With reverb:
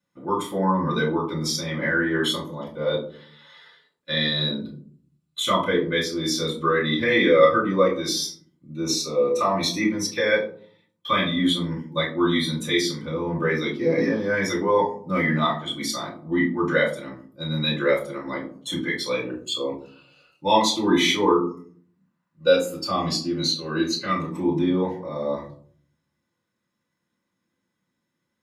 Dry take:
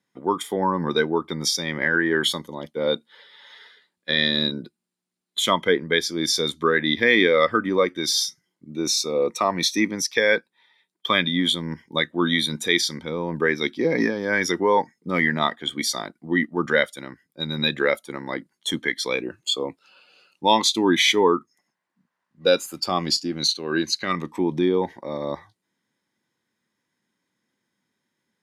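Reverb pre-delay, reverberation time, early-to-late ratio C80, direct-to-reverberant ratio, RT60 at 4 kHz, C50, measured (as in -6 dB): 3 ms, 0.50 s, 13.0 dB, -5.5 dB, 0.25 s, 8.0 dB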